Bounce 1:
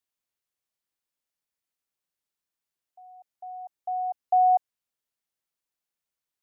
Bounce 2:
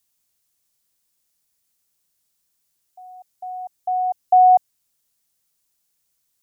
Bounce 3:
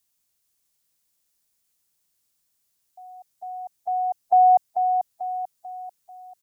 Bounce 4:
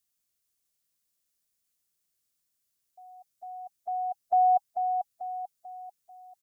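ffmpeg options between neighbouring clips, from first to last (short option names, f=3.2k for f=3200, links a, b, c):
-af "bass=f=250:g=7,treble=f=4k:g=11,volume=7.5dB"
-af "aecho=1:1:441|882|1323|1764|2205:0.447|0.192|0.0826|0.0355|0.0153,volume=-2dB"
-af "asuperstop=centerf=900:order=8:qfactor=4.9,volume=-6.5dB"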